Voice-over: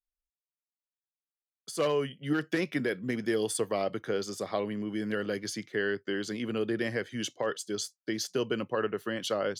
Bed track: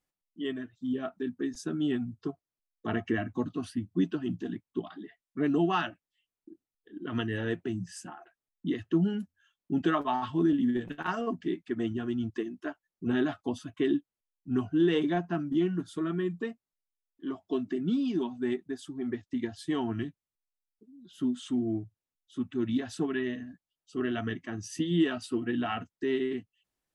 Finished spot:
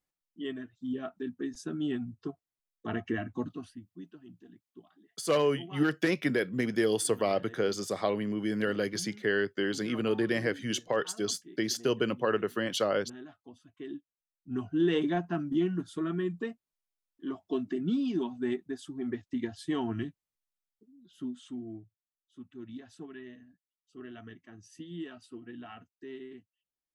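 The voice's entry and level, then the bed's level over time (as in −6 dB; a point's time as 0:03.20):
3.50 s, +2.0 dB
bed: 0:03.48 −3 dB
0:03.94 −19 dB
0:13.52 −19 dB
0:14.90 −1 dB
0:20.45 −1 dB
0:22.05 −14.5 dB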